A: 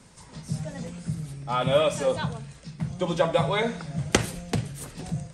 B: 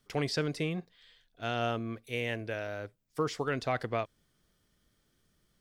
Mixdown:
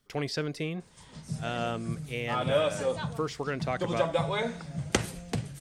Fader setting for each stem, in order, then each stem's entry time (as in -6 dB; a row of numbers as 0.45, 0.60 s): -5.0, -0.5 dB; 0.80, 0.00 s